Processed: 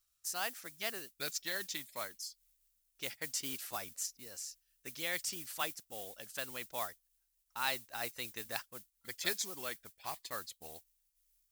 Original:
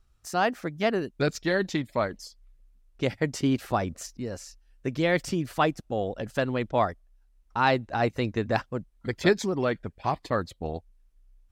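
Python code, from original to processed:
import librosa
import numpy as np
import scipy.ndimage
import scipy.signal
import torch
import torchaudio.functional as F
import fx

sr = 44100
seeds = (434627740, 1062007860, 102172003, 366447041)

y = fx.mod_noise(x, sr, seeds[0], snr_db=25)
y = librosa.effects.preemphasis(y, coef=0.97, zi=[0.0])
y = y * 10.0 ** (2.0 / 20.0)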